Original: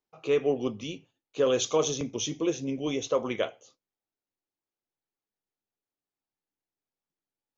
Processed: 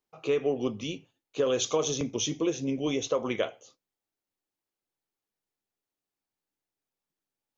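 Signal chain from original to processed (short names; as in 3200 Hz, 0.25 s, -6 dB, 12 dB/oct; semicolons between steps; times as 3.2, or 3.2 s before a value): compressor 4:1, threshold -25 dBFS, peak gain reduction 5.5 dB; gain +2 dB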